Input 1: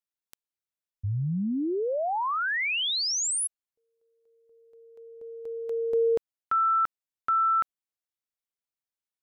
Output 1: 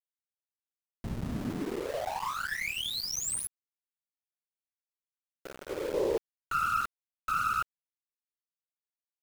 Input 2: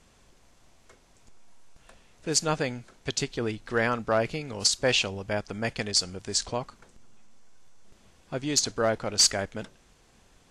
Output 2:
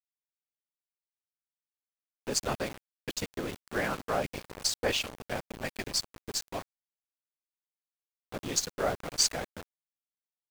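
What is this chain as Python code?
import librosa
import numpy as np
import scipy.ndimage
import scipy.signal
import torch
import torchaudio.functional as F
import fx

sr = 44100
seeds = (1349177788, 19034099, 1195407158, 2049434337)

y = fx.whisperise(x, sr, seeds[0])
y = fx.cheby_harmonics(y, sr, harmonics=(3, 8), levels_db=(-26, -27), full_scale_db=-7.5)
y = np.where(np.abs(y) >= 10.0 ** (-32.0 / 20.0), y, 0.0)
y = y * 10.0 ** (-4.5 / 20.0)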